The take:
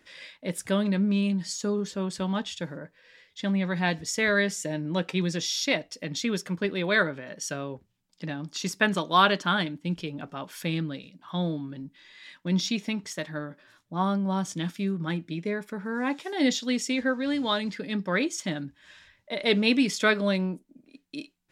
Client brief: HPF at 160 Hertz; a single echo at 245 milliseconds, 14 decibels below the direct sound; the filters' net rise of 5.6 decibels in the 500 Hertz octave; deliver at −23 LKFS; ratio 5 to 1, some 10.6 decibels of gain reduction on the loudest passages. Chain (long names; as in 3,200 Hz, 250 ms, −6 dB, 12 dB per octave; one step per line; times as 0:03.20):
high-pass filter 160 Hz
parametric band 500 Hz +7 dB
downward compressor 5 to 1, threshold −26 dBFS
single-tap delay 245 ms −14 dB
level +8.5 dB